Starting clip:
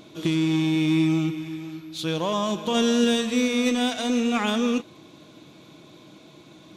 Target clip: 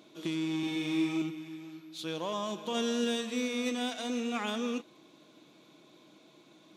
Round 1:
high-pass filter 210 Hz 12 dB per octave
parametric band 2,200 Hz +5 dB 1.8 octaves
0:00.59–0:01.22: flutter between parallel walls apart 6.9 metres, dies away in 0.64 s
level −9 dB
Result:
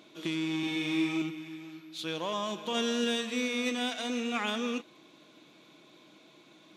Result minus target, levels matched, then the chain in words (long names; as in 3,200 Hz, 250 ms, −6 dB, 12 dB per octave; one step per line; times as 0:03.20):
2,000 Hz band +3.0 dB
high-pass filter 210 Hz 12 dB per octave
0:00.59–0:01.22: flutter between parallel walls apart 6.9 metres, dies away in 0.64 s
level −9 dB